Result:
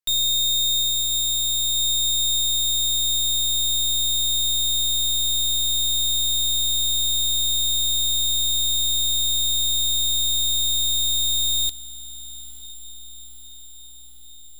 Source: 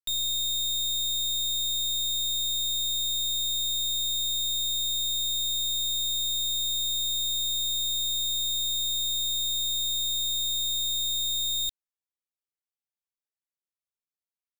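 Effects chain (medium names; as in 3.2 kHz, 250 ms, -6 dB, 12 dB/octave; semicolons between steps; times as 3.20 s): echo that smears into a reverb 970 ms, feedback 67%, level -11 dB; upward expansion 1.5:1, over -39 dBFS; trim +7.5 dB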